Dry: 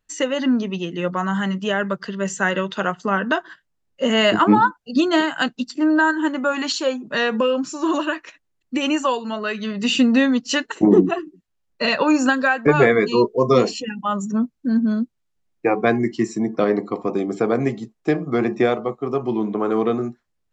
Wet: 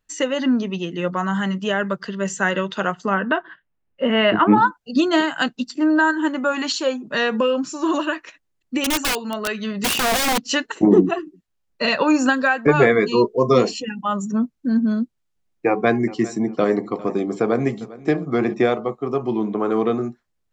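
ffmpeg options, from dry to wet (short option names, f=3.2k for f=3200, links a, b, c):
-filter_complex "[0:a]asettb=1/sr,asplit=3[a][b][c];[a]atrim=end=3.144[d];[b]atrim=start=3.14:end=4.58,asetpts=PTS-STARTPTS,afade=t=in:d=0.004:c=qsin,afade=t=out:st=1.436:d=0.004:c=qsin,lowpass=f=3k:w=0.5412,lowpass=f=3k:w=1.3066[e];[c]atrim=start=4.576[f];[d][e]acrossfade=d=0.004:c1=hsin:c2=qsin[g];[g][f]acrossfade=d=0.004:c1=qsin:c2=hsin,asettb=1/sr,asplit=3[h][i][j];[h]atrim=end=8.844[k];[i]atrim=start=8.84:end=10.42,asetpts=PTS-STARTPTS,afade=t=in:d=0.004:c=qsin,afade=t=out:st=1.576:d=0.004:c=qsin,aeval=exprs='(mod(5.62*val(0)+1,2)-1)/5.62':c=same[l];[j]atrim=start=10.416[m];[k][l]acrossfade=d=0.004:c1=hsin:c2=qsin[n];[n][m]acrossfade=d=0.004:c1=qsin:c2=hsin,asettb=1/sr,asplit=3[o][p][q];[o]atrim=end=15.674[r];[p]atrim=start=15.67:end=18.54,asetpts=PTS-STARTPTS,afade=t=in:d=0.004:c=qsin,afade=t=out:st=2.866:d=0.004:c=qsin,aecho=1:1:401|802:0.112|0.0325,atrim=end_sample=126567[s];[q]atrim=start=18.536[t];[r][s]acrossfade=d=0.004:c1=hsin:c2=qsin[u];[u][t]acrossfade=d=0.004:c1=qsin:c2=hsin"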